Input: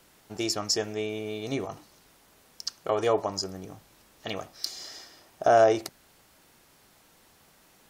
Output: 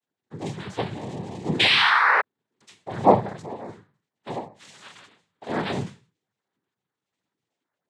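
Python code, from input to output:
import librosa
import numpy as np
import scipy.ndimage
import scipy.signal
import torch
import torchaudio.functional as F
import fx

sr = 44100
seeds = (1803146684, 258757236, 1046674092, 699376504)

y = fx.highpass(x, sr, hz=180.0, slope=6)
y = fx.high_shelf(y, sr, hz=5100.0, db=10.5)
y = fx.hpss(y, sr, part='harmonic', gain_db=9)
y = fx.low_shelf(y, sr, hz=260.0, db=5.0, at=(0.75, 3.34))
y = fx.leveller(y, sr, passes=5)
y = fx.octave_resonator(y, sr, note='A#', decay_s=0.36)
y = fx.spec_paint(y, sr, seeds[0], shape='fall', start_s=1.59, length_s=0.62, low_hz=940.0, high_hz=2800.0, level_db=-16.0)
y = fx.noise_vocoder(y, sr, seeds[1], bands=6)
y = F.gain(torch.from_numpy(y), -2.0).numpy()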